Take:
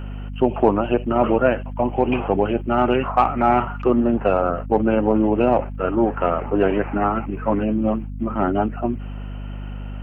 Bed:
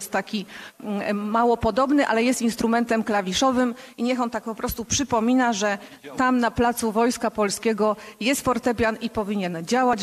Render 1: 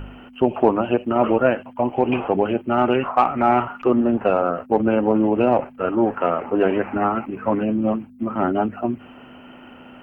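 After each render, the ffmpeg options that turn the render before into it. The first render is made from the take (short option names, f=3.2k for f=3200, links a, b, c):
-af "bandreject=f=50:t=h:w=4,bandreject=f=100:t=h:w=4,bandreject=f=150:t=h:w=4,bandreject=f=200:t=h:w=4"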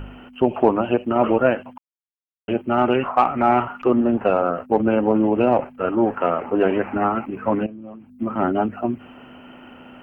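-filter_complex "[0:a]asettb=1/sr,asplit=3[a][b][c];[a]atrim=end=7.664[d];[b]atrim=start=7.66:end=8.16,asetpts=PTS-STARTPTS,afade=t=in:d=0.004:c=qsin,afade=t=out:st=0.496:d=0.004:c=qsin,acompressor=threshold=-43dB:ratio=2.5:attack=3.2:release=140:knee=1:detection=peak[e];[c]atrim=start=8.156[f];[d][e]acrossfade=d=0.004:c1=hsin:c2=qsin[g];[g][f]acrossfade=d=0.004:c1=qsin:c2=hsin,asplit=3[h][i][j];[h]atrim=end=1.78,asetpts=PTS-STARTPTS,afade=t=out:st=1.776:d=0.004:c=hsin[k];[i]atrim=start=1.78:end=2.48,asetpts=PTS-STARTPTS,volume=0[l];[j]atrim=start=2.48,asetpts=PTS-STARTPTS,afade=t=in:d=0.004:c=hsin[m];[k][l][m]concat=n=3:v=0:a=1"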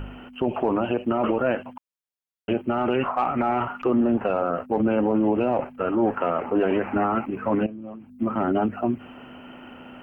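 -af "alimiter=limit=-13.5dB:level=0:latency=1:release=18"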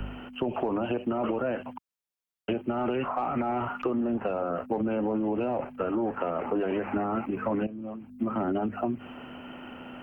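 -filter_complex "[0:a]acrossover=split=110|280|750[a][b][c][d];[d]alimiter=level_in=1dB:limit=-24dB:level=0:latency=1:release=15,volume=-1dB[e];[a][b][c][e]amix=inputs=4:normalize=0,acompressor=threshold=-25dB:ratio=6"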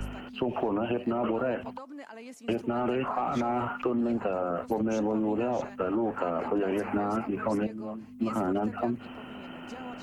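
-filter_complex "[1:a]volume=-24.5dB[a];[0:a][a]amix=inputs=2:normalize=0"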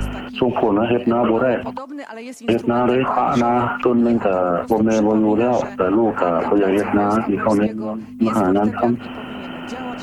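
-af "volume=12dB"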